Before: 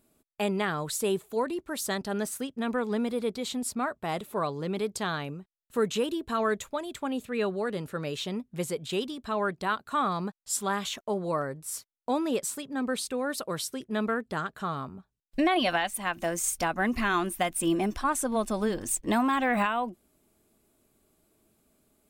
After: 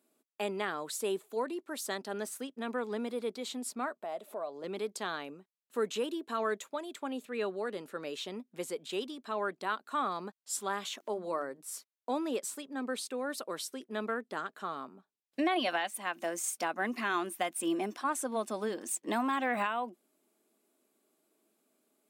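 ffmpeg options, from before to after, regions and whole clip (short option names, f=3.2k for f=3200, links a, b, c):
-filter_complex "[0:a]asettb=1/sr,asplit=3[a][b][c];[a]atrim=end=4.004[d];[b]atrim=start=4:end=4.64,asetpts=PTS-STARTPTS,afade=t=in:d=0.004:c=qsin,afade=t=out:st=0.636:d=0.004:c=qsin,equalizer=f=640:t=o:w=0.48:g=15,acompressor=threshold=-39dB:ratio=2:attack=3.2:release=140:knee=1:detection=peak[e];[c]atrim=start=4.636[f];[d][e]acrossfade=d=0.004:c1=hsin:c2=qsin[g];[g][f]acrossfade=d=0.004:c1=qsin:c2=hsin,asettb=1/sr,asplit=3[h][i][j];[h]atrim=end=11.004[k];[i]atrim=start=11:end=11.61,asetpts=PTS-STARTPTS,afade=t=in:d=0.004:c=qsin,afade=t=out:st=0.606:d=0.004:c=qsin,bandreject=f=50:t=h:w=6,bandreject=f=100:t=h:w=6,bandreject=f=150:t=h:w=6,bandreject=f=200:t=h:w=6,bandreject=f=250:t=h:w=6,bandreject=f=300:t=h:w=6,bandreject=f=350:t=h:w=6,acompressor=mode=upward:threshold=-36dB:ratio=2.5:attack=3.2:release=140:knee=2.83:detection=peak[l];[j]atrim=start=11.606[m];[k][l]acrossfade=d=0.004:c1=hsin:c2=qsin[n];[n][m]acrossfade=d=0.004:c1=qsin:c2=hsin,highpass=f=240:w=0.5412,highpass=f=240:w=1.3066,highshelf=f=11k:g=-3,volume=-5dB"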